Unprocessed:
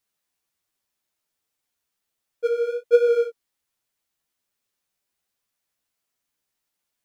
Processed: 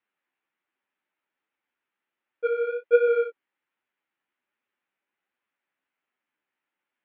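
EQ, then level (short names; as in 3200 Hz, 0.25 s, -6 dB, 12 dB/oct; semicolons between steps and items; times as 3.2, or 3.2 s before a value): air absorption 270 m; speaker cabinet 330–2800 Hz, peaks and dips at 460 Hz -7 dB, 670 Hz -8 dB, 1100 Hz -4 dB; +6.5 dB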